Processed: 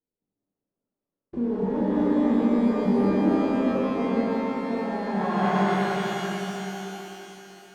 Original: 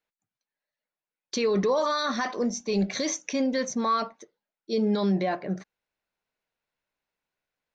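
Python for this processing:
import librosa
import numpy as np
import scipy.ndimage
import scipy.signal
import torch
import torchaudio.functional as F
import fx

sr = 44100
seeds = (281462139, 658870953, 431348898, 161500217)

y = fx.envelope_flatten(x, sr, power=0.1)
y = fx.filter_sweep_lowpass(y, sr, from_hz=360.0, to_hz=3200.0, start_s=4.14, end_s=6.57, q=1.8)
y = fx.echo_heads(y, sr, ms=63, heads='first and third', feedback_pct=60, wet_db=-10.5)
y = fx.over_compress(y, sr, threshold_db=-32.0, ratio=-1.0)
y = fx.rev_shimmer(y, sr, seeds[0], rt60_s=3.5, semitones=12, shimmer_db=-8, drr_db=-7.5)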